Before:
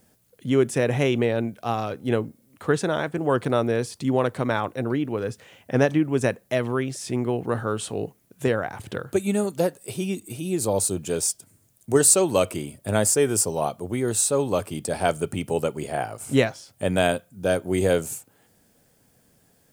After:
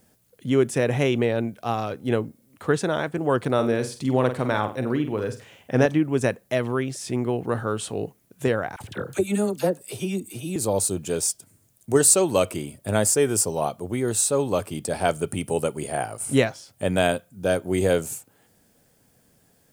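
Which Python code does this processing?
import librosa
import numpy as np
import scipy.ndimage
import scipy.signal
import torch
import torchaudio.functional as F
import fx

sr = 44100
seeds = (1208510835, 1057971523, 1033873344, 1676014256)

y = fx.room_flutter(x, sr, wall_m=8.1, rt60_s=0.31, at=(3.54, 5.86))
y = fx.dispersion(y, sr, late='lows', ms=47.0, hz=1000.0, at=(8.76, 10.56))
y = fx.peak_eq(y, sr, hz=9500.0, db=11.0, octaves=0.29, at=(15.28, 16.38))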